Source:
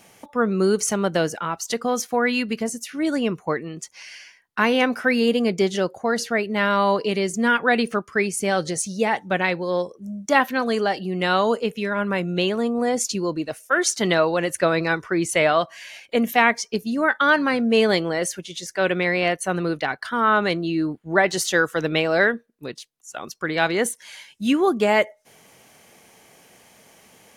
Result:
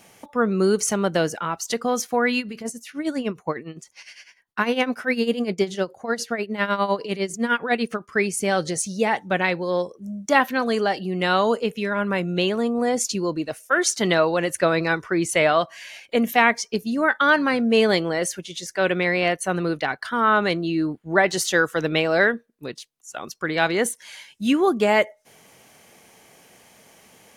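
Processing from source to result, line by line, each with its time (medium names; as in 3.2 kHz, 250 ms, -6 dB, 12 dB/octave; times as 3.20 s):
2.38–8.09 s: tremolo 9.9 Hz, depth 76%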